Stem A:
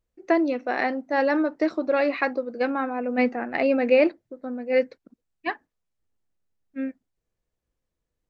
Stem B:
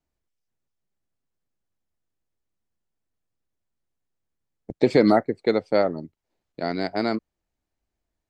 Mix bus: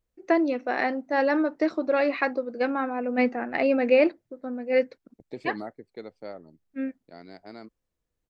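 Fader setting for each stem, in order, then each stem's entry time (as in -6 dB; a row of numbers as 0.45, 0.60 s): -1.0, -19.0 dB; 0.00, 0.50 s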